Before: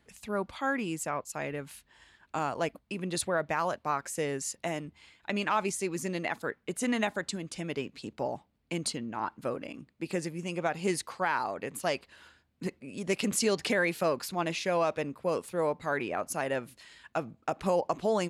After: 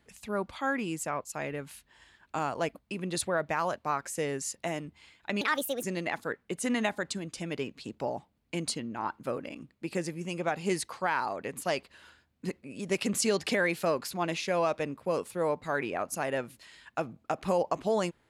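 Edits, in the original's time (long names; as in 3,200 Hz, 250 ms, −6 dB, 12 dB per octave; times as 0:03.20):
0:05.41–0:06.01: play speed 143%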